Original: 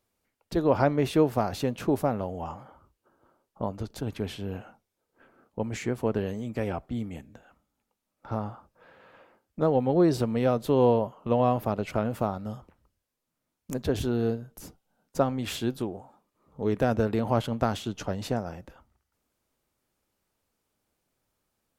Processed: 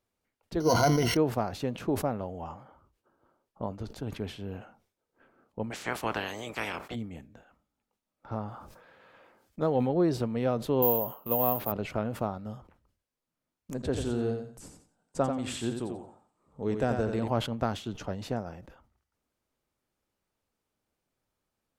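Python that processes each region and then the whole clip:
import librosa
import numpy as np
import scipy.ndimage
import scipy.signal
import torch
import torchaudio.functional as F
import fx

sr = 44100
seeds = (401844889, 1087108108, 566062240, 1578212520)

y = fx.chain(x, sr, fx.sample_sort(block=8),
    fx.ripple_eq(per_octave=1.9, db=14),
    fx.sustainer(db_per_s=25.0), at=(0.6, 1.17))
y = fx.spec_clip(y, sr, under_db=26, at=(5.7, 6.94), fade=0.02)
y = fx.highpass(y, sr, hz=110.0, slope=6, at=(5.7, 6.94), fade=0.02)
y = fx.chain(y, sr, fx.high_shelf(hz=2300.0, db=7.0),
    fx.notch(hz=2800.0, q=25.0),
    fx.sustainer(db_per_s=47.0), at=(8.48, 9.89))
y = fx.chain(y, sr, fx.low_shelf(hz=240.0, db=-7.0),
    fx.resample_bad(factor=3, down='none', up='zero_stuff'), at=(10.82, 11.72))
y = fx.chain(y, sr, fx.lowpass(hz=11000.0, slope=24),
    fx.peak_eq(hz=8100.0, db=12.5, octaves=0.32),
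    fx.echo_feedback(ms=89, feedback_pct=25, wet_db=-6.5), at=(13.74, 17.28))
y = fx.high_shelf(y, sr, hz=7300.0, db=-6.0)
y = fx.sustainer(y, sr, db_per_s=140.0)
y = y * librosa.db_to_amplitude(-4.0)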